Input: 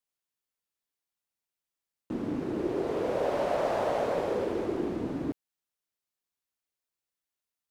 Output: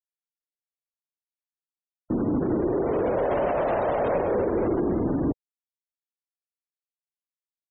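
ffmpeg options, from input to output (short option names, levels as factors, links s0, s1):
-filter_complex "[0:a]asplit=2[s0][s1];[s1]asoftclip=type=tanh:threshold=0.0251,volume=0.316[s2];[s0][s2]amix=inputs=2:normalize=0,lowshelf=f=87:g=7.5,alimiter=limit=0.0631:level=0:latency=1:release=29,afftfilt=real='re*gte(hypot(re,im),0.00891)':imag='im*gte(hypot(re,im),0.00891)':win_size=1024:overlap=0.75,acontrast=80"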